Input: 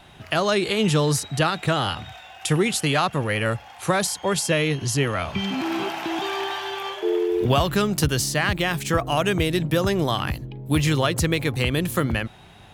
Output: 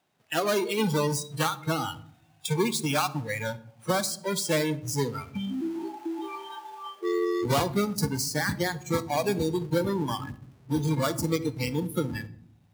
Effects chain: half-waves squared off; HPF 180 Hz 12 dB/oct; harmoniser +4 st -17 dB; spectral noise reduction 21 dB; on a send: reverb RT60 0.60 s, pre-delay 47 ms, DRR 17 dB; on the sum: gain -7 dB

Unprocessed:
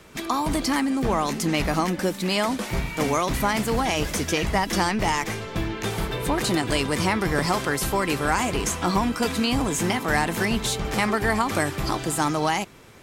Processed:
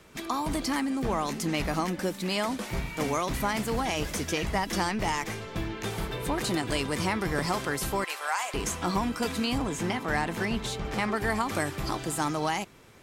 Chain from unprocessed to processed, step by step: 8.04–8.54 HPF 660 Hz 24 dB/oct; 9.58–11.16 high shelf 6900 Hz -10 dB; gain -5.5 dB

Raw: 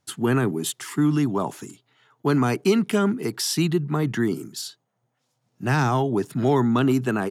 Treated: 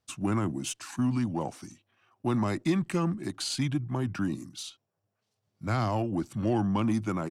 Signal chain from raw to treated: pitch shift -3 st; added harmonics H 8 -35 dB, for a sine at -8.5 dBFS; gain -7 dB

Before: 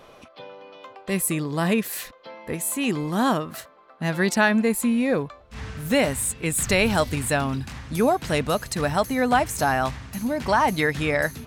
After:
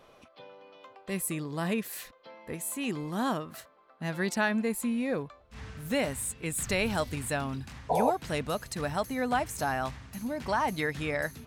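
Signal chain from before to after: painted sound noise, 7.89–8.11, 430–1000 Hz -18 dBFS; gain -8.5 dB

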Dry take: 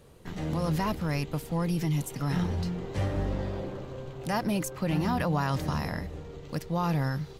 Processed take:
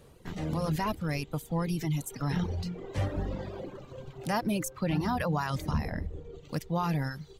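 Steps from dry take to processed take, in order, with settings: reverb removal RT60 1.4 s; 5.71–6.36 tilt -2 dB/oct

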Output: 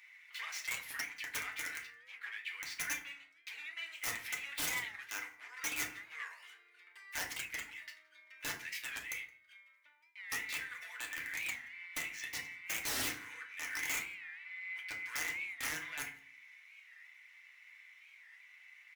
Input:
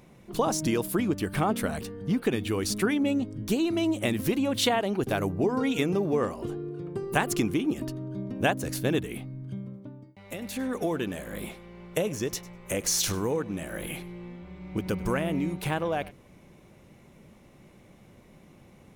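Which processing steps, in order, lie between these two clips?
median filter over 5 samples; 1.78–3.86 high shelf 2500 Hz -8 dB; compressor 2:1, threshold -34 dBFS, peak gain reduction 8.5 dB; overloaded stage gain 28 dB; ladder high-pass 1900 Hz, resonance 75%; wrapped overs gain 40 dB; outdoor echo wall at 29 m, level -26 dB; FDN reverb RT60 0.47 s, low-frequency decay 1.4×, high-frequency decay 0.55×, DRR -1 dB; record warp 45 rpm, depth 160 cents; gain +7.5 dB

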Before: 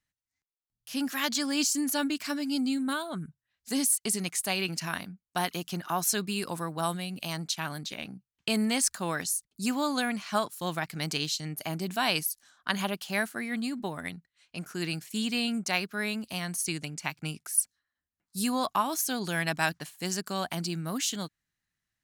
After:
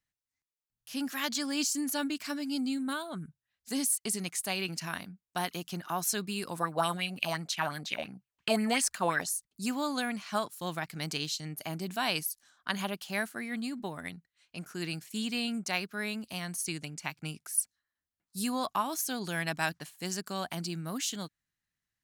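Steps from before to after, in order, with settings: 6.6–9.29 LFO bell 5.7 Hz 560–2900 Hz +15 dB; gain -3.5 dB

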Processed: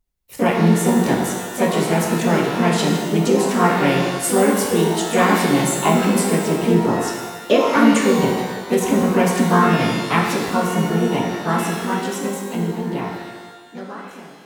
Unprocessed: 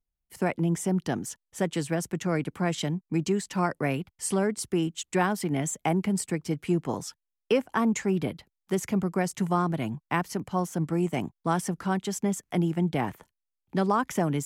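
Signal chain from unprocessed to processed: ending faded out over 4.46 s; harmoniser +4 st -5 dB, +5 st -7 dB; shimmer reverb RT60 1.3 s, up +12 st, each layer -8 dB, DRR -0.5 dB; gain +5.5 dB

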